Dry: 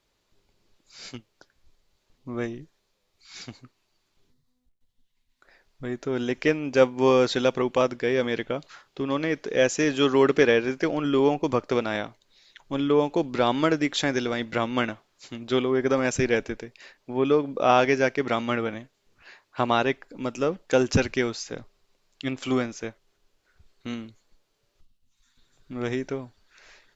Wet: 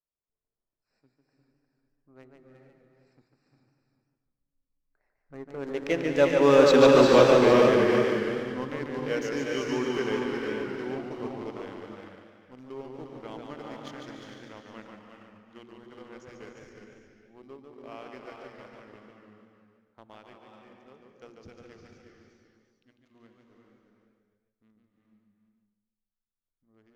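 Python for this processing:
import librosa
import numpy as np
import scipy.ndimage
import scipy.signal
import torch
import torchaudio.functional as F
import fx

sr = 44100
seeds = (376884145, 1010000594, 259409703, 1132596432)

y = fx.wiener(x, sr, points=15)
y = fx.doppler_pass(y, sr, speed_mps=30, closest_m=13.0, pass_at_s=6.96)
y = y + 10.0 ** (-6.0 / 20.0) * np.pad(y, (int(354 * sr / 1000.0), 0))[:len(y)]
y = fx.rev_gated(y, sr, seeds[0], gate_ms=480, shape='rising', drr_db=1.5)
y = fx.leveller(y, sr, passes=1)
y = fx.hum_notches(y, sr, base_hz=60, count=6)
y = fx.echo_warbled(y, sr, ms=145, feedback_pct=36, rate_hz=2.8, cents=106, wet_db=-5)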